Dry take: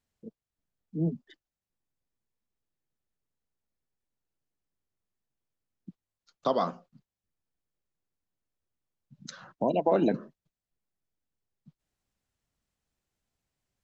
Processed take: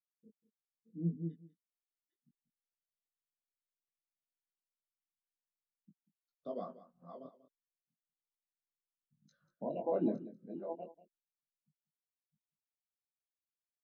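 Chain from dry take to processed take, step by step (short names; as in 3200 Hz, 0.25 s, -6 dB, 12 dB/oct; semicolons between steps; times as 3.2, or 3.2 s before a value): reverse delay 0.572 s, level -6 dB; rotary speaker horn 6.7 Hz, later 1 Hz, at 5.62; chorus 0.33 Hz, delay 19 ms, depth 5.2 ms; echo 0.19 s -11 dB; spectral expander 1.5:1; gain -4.5 dB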